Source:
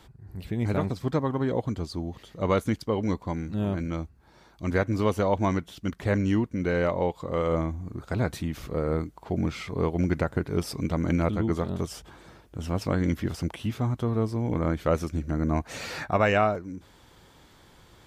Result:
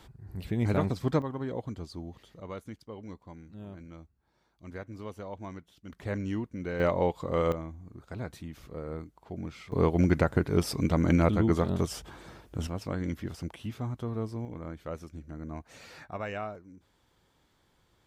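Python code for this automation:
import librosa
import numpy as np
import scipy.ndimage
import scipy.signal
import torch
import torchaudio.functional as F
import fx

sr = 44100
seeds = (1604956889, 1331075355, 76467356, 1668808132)

y = fx.gain(x, sr, db=fx.steps((0.0, -0.5), (1.22, -8.0), (2.4, -16.5), (5.9, -8.5), (6.8, -0.5), (7.52, -11.0), (9.72, 1.5), (12.67, -7.5), (14.45, -14.0)))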